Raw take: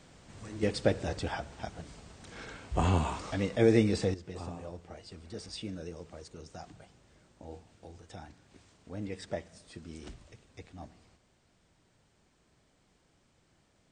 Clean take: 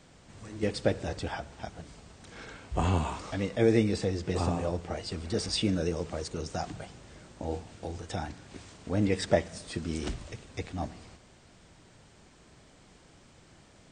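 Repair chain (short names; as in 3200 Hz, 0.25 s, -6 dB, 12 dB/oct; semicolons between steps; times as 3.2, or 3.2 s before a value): gain 0 dB, from 4.14 s +12 dB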